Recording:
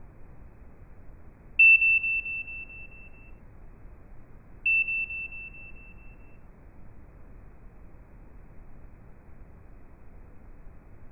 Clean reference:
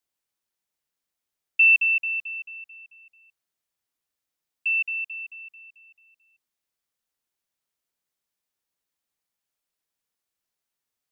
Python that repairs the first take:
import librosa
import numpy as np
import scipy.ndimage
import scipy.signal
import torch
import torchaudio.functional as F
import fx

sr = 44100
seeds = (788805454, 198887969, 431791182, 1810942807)

y = fx.noise_reduce(x, sr, print_start_s=6.26, print_end_s=6.76, reduce_db=30.0)
y = fx.fix_echo_inverse(y, sr, delay_ms=96, level_db=-16.0)